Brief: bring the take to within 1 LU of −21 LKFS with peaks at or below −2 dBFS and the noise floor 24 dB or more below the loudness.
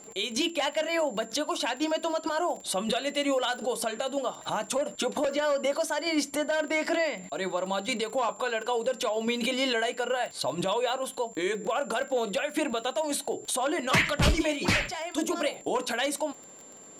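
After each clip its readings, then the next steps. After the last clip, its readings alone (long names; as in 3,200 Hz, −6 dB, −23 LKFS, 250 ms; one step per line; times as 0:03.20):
crackle rate 26 per second; interfering tone 7,300 Hz; level of the tone −48 dBFS; integrated loudness −28.5 LKFS; sample peak −12.5 dBFS; target loudness −21.0 LKFS
→ click removal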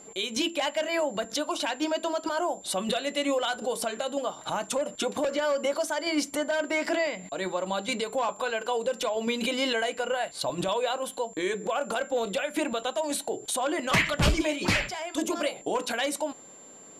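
crackle rate 0.059 per second; interfering tone 7,300 Hz; level of the tone −48 dBFS
→ notch filter 7,300 Hz, Q 30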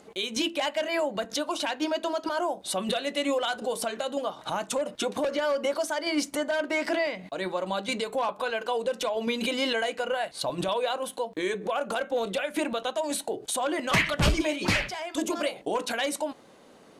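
interfering tone none found; integrated loudness −29.0 LKFS; sample peak −12.5 dBFS; target loudness −21.0 LKFS
→ level +8 dB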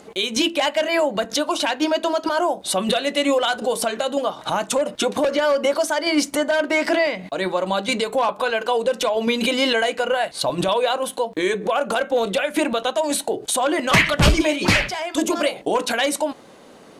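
integrated loudness −21.0 LKFS; sample peak −4.5 dBFS; background noise floor −45 dBFS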